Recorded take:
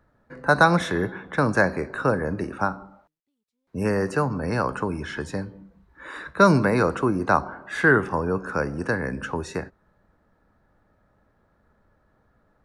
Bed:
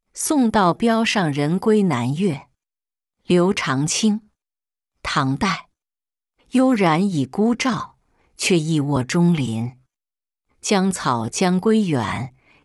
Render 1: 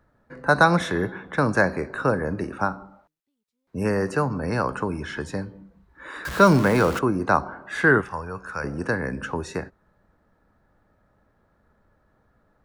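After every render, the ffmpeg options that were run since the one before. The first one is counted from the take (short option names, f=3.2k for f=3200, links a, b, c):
-filter_complex "[0:a]asettb=1/sr,asplit=3[a][b][c];[a]atrim=end=6.254[d];[b]atrim=start=6.25:end=6.99,asetpts=PTS-STARTPTS,afade=t=in:d=0.004:c=qsin,afade=t=out:st=0.736:d=0.004:c=qsin,aeval=exprs='val(0)+0.5*0.0447*sgn(val(0))':c=same[e];[c]atrim=start=6.986[f];[d][e]acrossfade=d=0.004:c1=hsin:c2=qsin[g];[g][f]acrossfade=d=0.004:c1=qsin:c2=hsin,asettb=1/sr,asplit=3[h][i][j];[h]atrim=end=8.014[k];[i]atrim=start=8.01:end=8.64,asetpts=PTS-STARTPTS,afade=t=in:d=0.004:c=qsin,afade=t=out:st=0.626:d=0.004:c=qsin,equalizer=f=290:t=o:w=2.3:g=-14.5[l];[j]atrim=start=8.636[m];[k][l]acrossfade=d=0.004:c1=hsin:c2=qsin[n];[n][m]acrossfade=d=0.004:c1=qsin:c2=hsin"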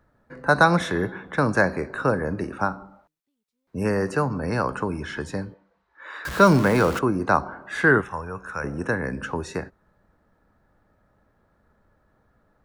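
-filter_complex "[0:a]asettb=1/sr,asplit=3[a][b][c];[a]atrim=end=5.544[d];[b]atrim=start=5.54:end=6.25,asetpts=PTS-STARTPTS,afade=t=in:d=0.004:c=qsin,afade=t=out:st=0.706:d=0.004:c=qsin,acrossover=split=470 6400:gain=0.0794 1 0.0891[e][f][g];[e][f][g]amix=inputs=3:normalize=0[h];[c]atrim=start=6.246[i];[d][h]acrossfade=d=0.004:c1=hsin:c2=qsin[j];[j][i]acrossfade=d=0.004:c1=qsin:c2=hsin,asettb=1/sr,asplit=3[k][l][m];[k]atrim=end=8.034[n];[l]atrim=start=8.03:end=9.04,asetpts=PTS-STARTPTS,afade=t=in:d=0.004:c=qsin,afade=t=out:st=1.006:d=0.004:c=qsin,asuperstop=centerf=4700:order=12:qfactor=4.8[o];[m]atrim=start=9.036[p];[n][o]acrossfade=d=0.004:c1=hsin:c2=qsin[q];[q][p]acrossfade=d=0.004:c1=qsin:c2=hsin"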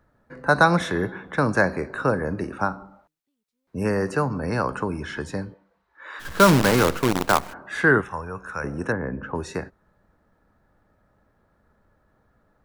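-filter_complex "[0:a]asplit=3[a][b][c];[a]afade=t=out:st=6.19:d=0.02[d];[b]acrusher=bits=4:dc=4:mix=0:aa=0.000001,afade=t=in:st=6.19:d=0.02,afade=t=out:st=7.52:d=0.02[e];[c]afade=t=in:st=7.52:d=0.02[f];[d][e][f]amix=inputs=3:normalize=0,asettb=1/sr,asplit=3[g][h][i];[g]atrim=end=8.924[j];[h]atrim=start=8.92:end=9.35,asetpts=PTS-STARTPTS,afade=t=in:d=0.004:c=qsin,afade=t=out:st=0.426:d=0.004:c=qsin,lowpass=1.4k[k];[i]atrim=start=9.346[l];[j][k]acrossfade=d=0.004:c1=hsin:c2=qsin[m];[m][l]acrossfade=d=0.004:c1=qsin:c2=hsin"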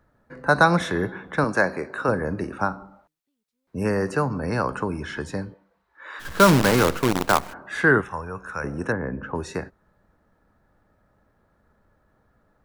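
-filter_complex "[0:a]asettb=1/sr,asplit=3[a][b][c];[a]atrim=end=1.444[d];[b]atrim=start=1.44:end=2.09,asetpts=PTS-STARTPTS,afade=t=in:d=0.004:c=qsin,afade=t=out:st=0.646:d=0.004:c=qsin,highpass=f=250:p=1[e];[c]atrim=start=2.086[f];[d][e]acrossfade=d=0.004:c1=hsin:c2=qsin[g];[g][f]acrossfade=d=0.004:c1=qsin:c2=hsin"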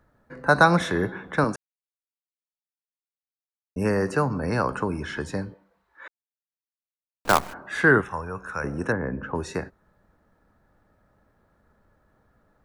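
-filter_complex "[0:a]asplit=5[a][b][c][d][e];[a]atrim=end=1.56,asetpts=PTS-STARTPTS,afade=t=out:st=1.556:d=0.004:c=hsin[f];[b]atrim=start=1.56:end=3.76,asetpts=PTS-STARTPTS,volume=0[g];[c]atrim=start=3.76:end=6.08,asetpts=PTS-STARTPTS,afade=t=in:d=0.004:c=hsin,afade=t=out:st=2.316:d=0.004:c=hsin[h];[d]atrim=start=6.08:end=7.25,asetpts=PTS-STARTPTS,volume=0[i];[e]atrim=start=7.25,asetpts=PTS-STARTPTS,afade=t=in:d=0.004:c=hsin[j];[f][g][h][i][j]concat=n=5:v=0:a=1"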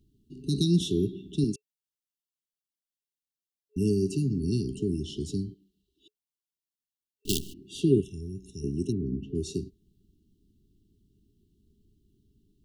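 -af "afftfilt=real='re*(1-between(b*sr/4096,420,2700))':imag='im*(1-between(b*sr/4096,420,2700))':win_size=4096:overlap=0.75"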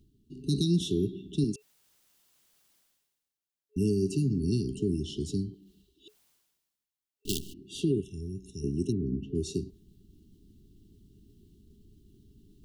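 -af "areverse,acompressor=mode=upward:threshold=-47dB:ratio=2.5,areverse,alimiter=limit=-17.5dB:level=0:latency=1:release=261"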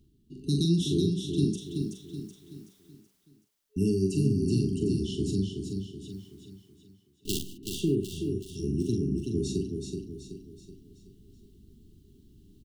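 -filter_complex "[0:a]asplit=2[a][b];[b]adelay=42,volume=-6dB[c];[a][c]amix=inputs=2:normalize=0,aecho=1:1:377|754|1131|1508|1885:0.531|0.234|0.103|0.0452|0.0199"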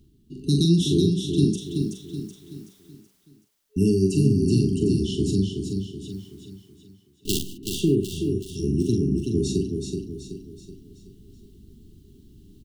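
-af "volume=6dB"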